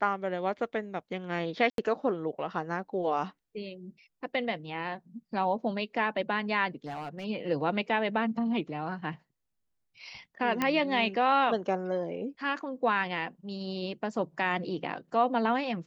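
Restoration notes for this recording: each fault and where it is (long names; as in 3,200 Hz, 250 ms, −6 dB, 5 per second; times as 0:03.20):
0:01.70–0:01.78: drop-out 82 ms
0:06.86–0:07.25: clipping −32.5 dBFS
0:10.62: click −13 dBFS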